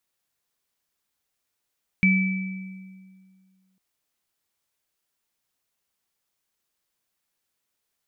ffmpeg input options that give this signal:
-f lavfi -i "aevalsrc='0.158*pow(10,-3*t/2.04)*sin(2*PI*189*t)+0.141*pow(10,-3*t/1.3)*sin(2*PI*2310*t)':d=1.75:s=44100"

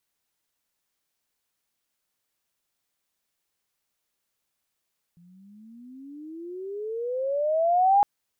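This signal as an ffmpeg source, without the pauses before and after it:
-f lavfi -i "aevalsrc='pow(10,(-14.5+36.5*(t/2.86-1))/20)*sin(2*PI*169*2.86/(27.5*log(2)/12)*(exp(27.5*log(2)/12*t/2.86)-1))':d=2.86:s=44100"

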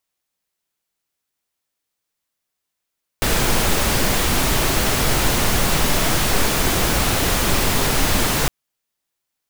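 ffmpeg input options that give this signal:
-f lavfi -i "anoisesrc=c=pink:a=0.684:d=5.26:r=44100:seed=1"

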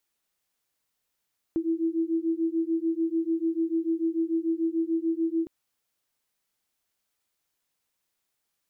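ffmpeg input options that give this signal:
-f lavfi -i "aevalsrc='0.0447*(sin(2*PI*325*t)+sin(2*PI*331.8*t))':d=3.91:s=44100"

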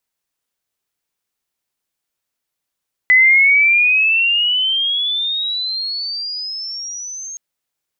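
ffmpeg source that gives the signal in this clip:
-f lavfi -i "aevalsrc='pow(10,(-6.5-20.5*t/4.27)/20)*sin(2*PI*2000*4.27/log(6500/2000)*(exp(log(6500/2000)*t/4.27)-1))':d=4.27:s=44100"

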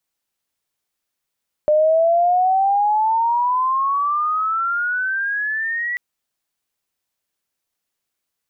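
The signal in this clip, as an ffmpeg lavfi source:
-f lavfi -i "aevalsrc='pow(10,(-11.5-9*t/4.29)/20)*sin(2*PI*600*4.29/(20.5*log(2)/12)*(exp(20.5*log(2)/12*t/4.29)-1))':d=4.29:s=44100"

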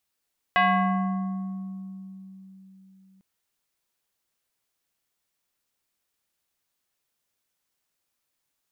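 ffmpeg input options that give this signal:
-f lavfi -i "aevalsrc='0.158*pow(10,-3*t/4.06)*sin(2*PI*191*t+2.3*pow(10,-3*t/2.56)*sin(2*PI*4.77*191*t))':d=2.65:s=44100"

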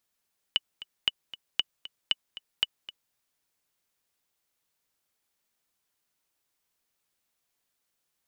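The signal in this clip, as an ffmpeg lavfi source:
-f lavfi -i "aevalsrc='pow(10,(-10-16.5*gte(mod(t,2*60/232),60/232))/20)*sin(2*PI*2960*mod(t,60/232))*exp(-6.91*mod(t,60/232)/0.03)':d=2.58:s=44100"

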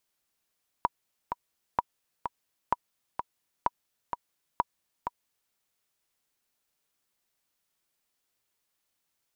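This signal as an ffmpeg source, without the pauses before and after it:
-f lavfi -i "aevalsrc='pow(10,(-10.5-7*gte(mod(t,2*60/128),60/128))/20)*sin(2*PI*966*mod(t,60/128))*exp(-6.91*mod(t,60/128)/0.03)':d=4.68:s=44100"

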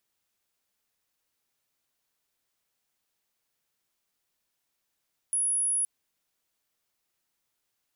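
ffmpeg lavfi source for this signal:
-f lavfi -i "sine=f=10300:d=0.52:r=44100,volume=-5.94dB"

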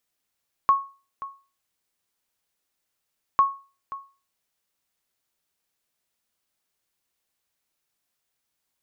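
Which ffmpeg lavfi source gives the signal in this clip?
-f lavfi -i "aevalsrc='0.299*(sin(2*PI*1100*mod(t,2.7))*exp(-6.91*mod(t,2.7)/0.34)+0.15*sin(2*PI*1100*max(mod(t,2.7)-0.53,0))*exp(-6.91*max(mod(t,2.7)-0.53,0)/0.34))':d=5.4:s=44100"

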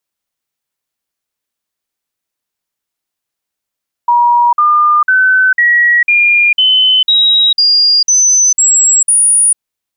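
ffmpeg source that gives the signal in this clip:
-f lavfi -i "aevalsrc='0.531*clip(min(mod(t,0.5),0.45-mod(t,0.5))/0.005,0,1)*sin(2*PI*957*pow(2,floor(t/0.5)/3)*mod(t,0.5))':d=5.5:s=44100"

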